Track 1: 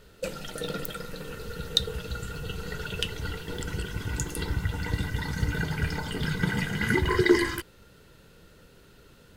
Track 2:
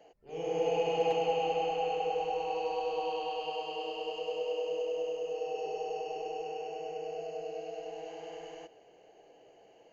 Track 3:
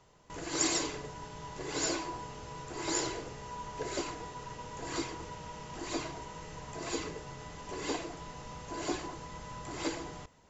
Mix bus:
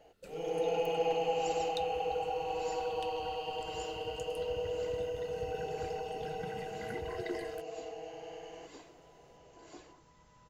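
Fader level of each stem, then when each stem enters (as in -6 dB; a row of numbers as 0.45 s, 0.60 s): -19.5 dB, -2.0 dB, -18.0 dB; 0.00 s, 0.00 s, 0.85 s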